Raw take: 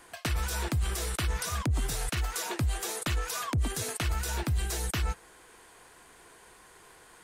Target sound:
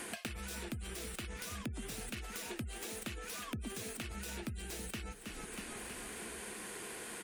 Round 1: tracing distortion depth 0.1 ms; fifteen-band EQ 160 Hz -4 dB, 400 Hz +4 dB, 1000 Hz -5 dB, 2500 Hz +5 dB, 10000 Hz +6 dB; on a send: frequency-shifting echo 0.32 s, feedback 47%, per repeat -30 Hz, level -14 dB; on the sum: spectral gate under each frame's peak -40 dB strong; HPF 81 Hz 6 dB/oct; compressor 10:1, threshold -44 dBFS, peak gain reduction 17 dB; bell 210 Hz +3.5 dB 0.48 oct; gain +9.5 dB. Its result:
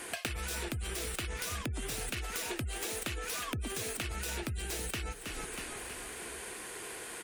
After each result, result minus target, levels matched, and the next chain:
compressor: peak gain reduction -7 dB; 250 Hz band -4.5 dB
tracing distortion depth 0.1 ms; fifteen-band EQ 160 Hz -4 dB, 400 Hz +4 dB, 1000 Hz -5 dB, 2500 Hz +5 dB, 10000 Hz +6 dB; on a send: frequency-shifting echo 0.32 s, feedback 47%, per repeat -30 Hz, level -14 dB; on the sum: spectral gate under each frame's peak -40 dB strong; HPF 81 Hz 6 dB/oct; compressor 10:1, threshold -51.5 dBFS, peak gain reduction 23.5 dB; bell 210 Hz +3.5 dB 0.48 oct; gain +9.5 dB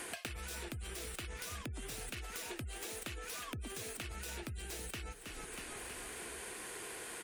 250 Hz band -4.5 dB
tracing distortion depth 0.1 ms; fifteen-band EQ 160 Hz -4 dB, 400 Hz +4 dB, 1000 Hz -5 dB, 2500 Hz +5 dB, 10000 Hz +6 dB; on a send: frequency-shifting echo 0.32 s, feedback 47%, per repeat -30 Hz, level -14 dB; on the sum: spectral gate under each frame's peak -40 dB strong; HPF 81 Hz 6 dB/oct; compressor 10:1, threshold -51.5 dBFS, peak gain reduction 23.5 dB; bell 210 Hz +14 dB 0.48 oct; gain +9.5 dB

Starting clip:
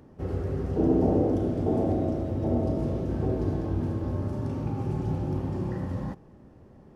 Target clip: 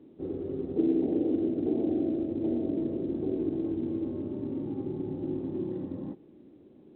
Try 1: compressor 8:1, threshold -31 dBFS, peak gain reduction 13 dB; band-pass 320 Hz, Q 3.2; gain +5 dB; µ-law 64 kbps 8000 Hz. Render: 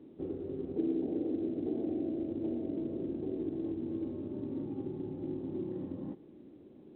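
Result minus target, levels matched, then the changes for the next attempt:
compressor: peak gain reduction +6.5 dB
change: compressor 8:1, threshold -23.5 dBFS, peak gain reduction 6.5 dB

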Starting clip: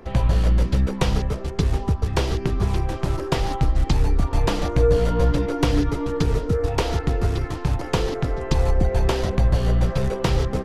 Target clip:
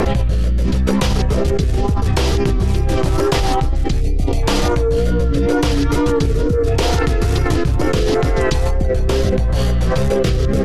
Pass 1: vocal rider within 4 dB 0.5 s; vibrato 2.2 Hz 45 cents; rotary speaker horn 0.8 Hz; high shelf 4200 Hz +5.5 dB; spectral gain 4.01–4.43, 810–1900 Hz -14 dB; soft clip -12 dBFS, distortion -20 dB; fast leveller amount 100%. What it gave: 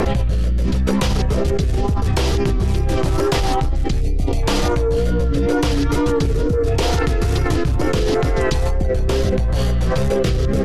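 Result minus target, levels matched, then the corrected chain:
soft clip: distortion +14 dB
vocal rider within 4 dB 0.5 s; vibrato 2.2 Hz 45 cents; rotary speaker horn 0.8 Hz; high shelf 4200 Hz +5.5 dB; spectral gain 4.01–4.43, 810–1900 Hz -14 dB; soft clip -3.5 dBFS, distortion -34 dB; fast leveller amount 100%

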